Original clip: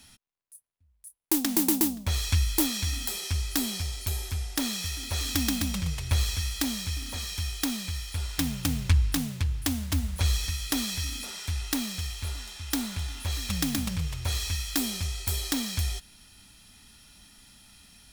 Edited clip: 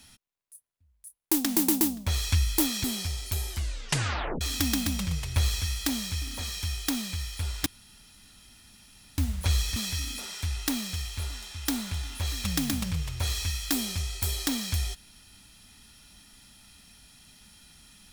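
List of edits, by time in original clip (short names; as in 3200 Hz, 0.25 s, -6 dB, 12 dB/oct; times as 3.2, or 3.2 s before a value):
2.84–3.59 cut
4.25 tape stop 0.91 s
8.41–9.93 room tone
10.51–10.81 cut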